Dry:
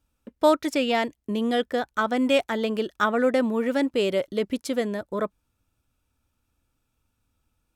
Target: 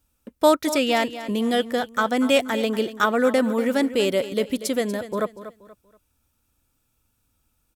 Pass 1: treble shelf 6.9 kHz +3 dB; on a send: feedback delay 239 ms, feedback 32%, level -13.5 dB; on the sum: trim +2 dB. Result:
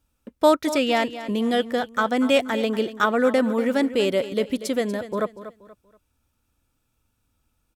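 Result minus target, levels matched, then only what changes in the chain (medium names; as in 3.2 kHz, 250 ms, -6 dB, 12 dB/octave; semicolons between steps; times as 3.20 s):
8 kHz band -4.5 dB
change: treble shelf 6.9 kHz +11 dB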